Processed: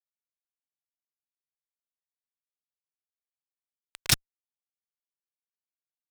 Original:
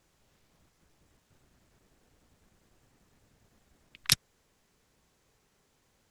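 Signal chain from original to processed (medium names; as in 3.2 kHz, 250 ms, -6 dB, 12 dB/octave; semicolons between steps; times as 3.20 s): word length cut 8-bit, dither none; fuzz box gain 36 dB, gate -36 dBFS; trim -2 dB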